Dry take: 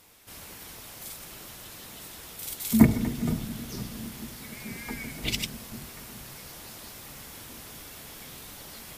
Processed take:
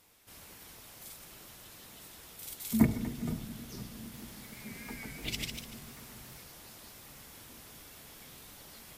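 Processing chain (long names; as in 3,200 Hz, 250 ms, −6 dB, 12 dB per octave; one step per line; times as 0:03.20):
0:03.99–0:06.44: feedback echo with a swinging delay time 146 ms, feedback 31%, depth 113 cents, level −5 dB
level −7.5 dB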